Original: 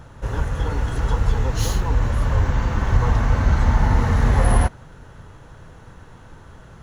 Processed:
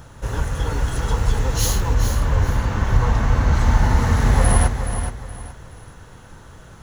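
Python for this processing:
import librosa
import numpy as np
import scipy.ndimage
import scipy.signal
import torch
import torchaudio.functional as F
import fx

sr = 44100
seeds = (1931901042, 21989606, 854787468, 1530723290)

y = fx.high_shelf(x, sr, hz=4800.0, db=fx.steps((0.0, 11.0), (1.93, 4.0), (3.53, 10.0)))
y = fx.echo_feedback(y, sr, ms=422, feedback_pct=30, wet_db=-8.5)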